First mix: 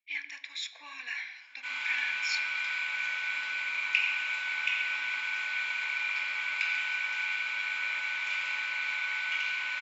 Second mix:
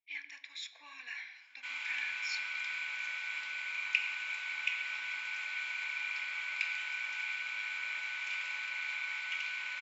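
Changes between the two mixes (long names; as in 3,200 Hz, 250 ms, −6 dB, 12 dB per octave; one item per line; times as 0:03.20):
speech −6.5 dB
background: send −10.0 dB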